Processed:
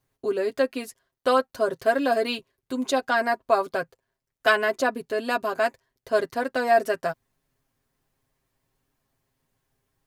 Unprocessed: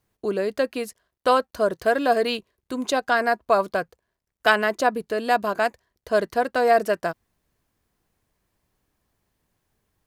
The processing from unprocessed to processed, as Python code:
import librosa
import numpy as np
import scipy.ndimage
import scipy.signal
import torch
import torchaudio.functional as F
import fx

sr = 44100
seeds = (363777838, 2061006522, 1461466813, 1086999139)

y = x + 0.72 * np.pad(x, (int(7.5 * sr / 1000.0), 0))[:len(x)]
y = F.gain(torch.from_numpy(y), -3.5).numpy()